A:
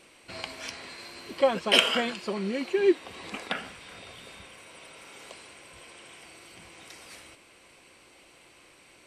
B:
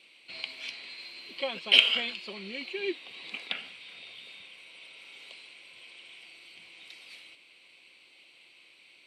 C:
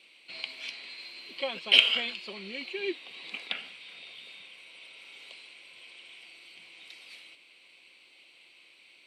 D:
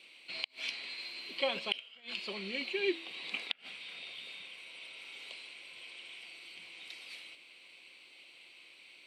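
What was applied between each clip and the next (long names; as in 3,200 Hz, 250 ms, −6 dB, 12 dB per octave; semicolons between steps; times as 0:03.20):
high-pass filter 150 Hz 12 dB per octave; flat-topped bell 3,100 Hz +14.5 dB 1.3 octaves; level −12 dB
high-pass filter 130 Hz 6 dB per octave
hum removal 110.5 Hz, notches 10; gate with flip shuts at −17 dBFS, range −29 dB; level +1 dB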